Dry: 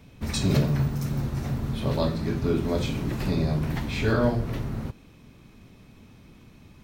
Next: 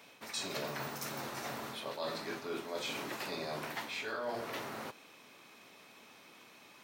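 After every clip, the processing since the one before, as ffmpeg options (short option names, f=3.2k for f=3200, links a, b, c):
-af "highpass=630,areverse,acompressor=threshold=-40dB:ratio=6,areverse,volume=3.5dB"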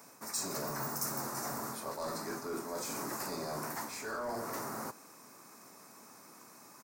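-filter_complex "[0:a]highpass=91,asplit=2[a][b];[b]aeval=exprs='0.0141*(abs(mod(val(0)/0.0141+3,4)-2)-1)':c=same,volume=-4dB[c];[a][c]amix=inputs=2:normalize=0,firequalizer=gain_entry='entry(240,0);entry(500,-4);entry(1100,1);entry(3200,-21);entry(4900,0);entry(7400,6)':delay=0.05:min_phase=1"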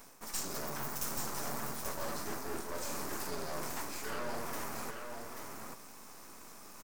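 -af "areverse,acompressor=mode=upward:threshold=-46dB:ratio=2.5,areverse,aeval=exprs='max(val(0),0)':c=same,aecho=1:1:834:0.531,volume=2.5dB"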